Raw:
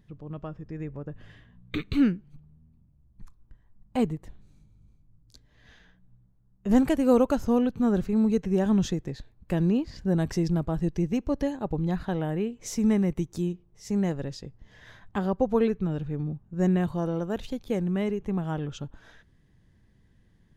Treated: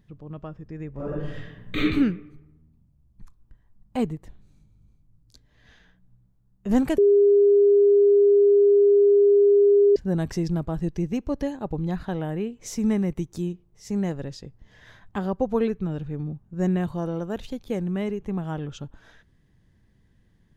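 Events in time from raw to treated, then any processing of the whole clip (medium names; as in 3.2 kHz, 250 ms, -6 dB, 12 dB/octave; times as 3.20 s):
0.93–1.82 s: reverb throw, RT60 0.89 s, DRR -10 dB
6.98–9.96 s: bleep 405 Hz -13 dBFS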